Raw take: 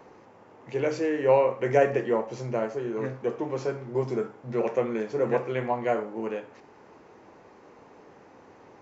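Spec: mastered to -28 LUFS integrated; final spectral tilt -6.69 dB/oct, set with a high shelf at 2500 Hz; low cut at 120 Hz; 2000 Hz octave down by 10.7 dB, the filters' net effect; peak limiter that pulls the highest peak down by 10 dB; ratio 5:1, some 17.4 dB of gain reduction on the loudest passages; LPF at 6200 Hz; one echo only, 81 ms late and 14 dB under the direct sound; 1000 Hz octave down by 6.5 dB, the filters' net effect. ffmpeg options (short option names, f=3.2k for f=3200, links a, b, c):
-af "highpass=120,lowpass=6.2k,equalizer=f=1k:t=o:g=-7,equalizer=f=2k:t=o:g=-8,highshelf=f=2.5k:g=-7,acompressor=threshold=-38dB:ratio=5,alimiter=level_in=13.5dB:limit=-24dB:level=0:latency=1,volume=-13.5dB,aecho=1:1:81:0.2,volume=19dB"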